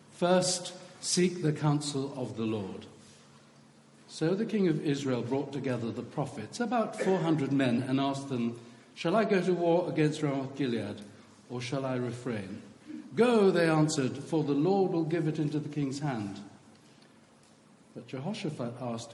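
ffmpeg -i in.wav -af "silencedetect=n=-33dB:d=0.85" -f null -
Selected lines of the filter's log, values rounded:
silence_start: 2.79
silence_end: 4.16 | silence_duration: 1.37
silence_start: 16.34
silence_end: 17.96 | silence_duration: 1.62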